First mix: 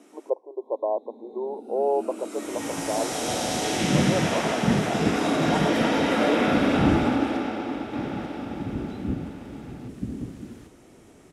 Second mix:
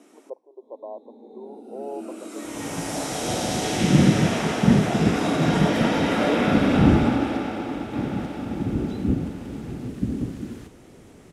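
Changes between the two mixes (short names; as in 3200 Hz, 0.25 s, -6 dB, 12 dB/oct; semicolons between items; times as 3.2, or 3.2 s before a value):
speech -11.0 dB; second sound +6.0 dB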